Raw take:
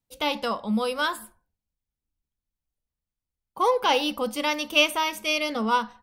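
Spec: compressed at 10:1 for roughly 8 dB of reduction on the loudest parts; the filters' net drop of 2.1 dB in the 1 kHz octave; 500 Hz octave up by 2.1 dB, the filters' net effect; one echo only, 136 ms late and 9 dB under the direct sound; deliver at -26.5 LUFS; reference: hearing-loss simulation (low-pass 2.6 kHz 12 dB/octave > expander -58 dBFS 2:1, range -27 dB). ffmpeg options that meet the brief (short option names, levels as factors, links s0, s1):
-af "equalizer=f=500:t=o:g=3,equalizer=f=1000:t=o:g=-3,acompressor=threshold=0.0708:ratio=10,lowpass=2600,aecho=1:1:136:0.355,agate=range=0.0447:threshold=0.00126:ratio=2,volume=1.33"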